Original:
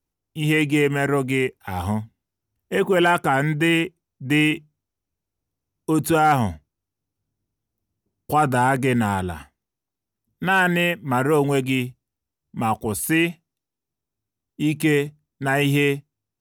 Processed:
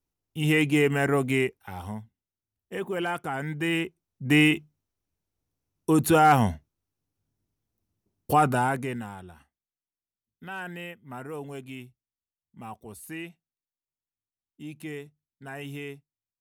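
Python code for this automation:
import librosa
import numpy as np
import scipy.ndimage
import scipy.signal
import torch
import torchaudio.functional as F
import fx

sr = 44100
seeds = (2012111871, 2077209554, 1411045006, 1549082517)

y = fx.gain(x, sr, db=fx.line((1.41, -3.0), (1.82, -12.0), (3.37, -12.0), (4.29, -1.0), (8.33, -1.0), (8.75, -8.0), (9.13, -18.5)))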